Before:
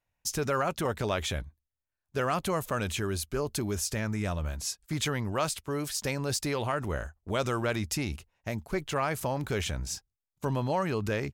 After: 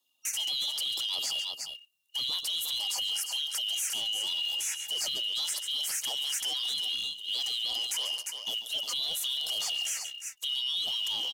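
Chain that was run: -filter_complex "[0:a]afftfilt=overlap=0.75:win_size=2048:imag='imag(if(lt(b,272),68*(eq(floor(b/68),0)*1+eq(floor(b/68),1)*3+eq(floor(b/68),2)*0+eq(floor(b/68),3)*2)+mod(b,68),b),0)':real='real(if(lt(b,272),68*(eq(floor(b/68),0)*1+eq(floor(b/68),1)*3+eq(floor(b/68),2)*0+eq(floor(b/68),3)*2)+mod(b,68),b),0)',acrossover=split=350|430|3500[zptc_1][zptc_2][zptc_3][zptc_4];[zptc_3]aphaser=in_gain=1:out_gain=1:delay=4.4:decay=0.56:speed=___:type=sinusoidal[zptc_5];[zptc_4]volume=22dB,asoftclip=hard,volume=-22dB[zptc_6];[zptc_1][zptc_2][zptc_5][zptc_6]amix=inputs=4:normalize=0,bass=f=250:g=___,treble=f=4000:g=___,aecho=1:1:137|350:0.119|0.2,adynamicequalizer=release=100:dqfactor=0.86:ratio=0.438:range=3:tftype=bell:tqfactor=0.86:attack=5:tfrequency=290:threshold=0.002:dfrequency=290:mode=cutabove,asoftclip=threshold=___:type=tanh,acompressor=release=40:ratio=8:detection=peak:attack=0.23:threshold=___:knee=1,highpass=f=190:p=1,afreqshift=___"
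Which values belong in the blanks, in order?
0.84, -13, 14, -13dB, -27dB, -160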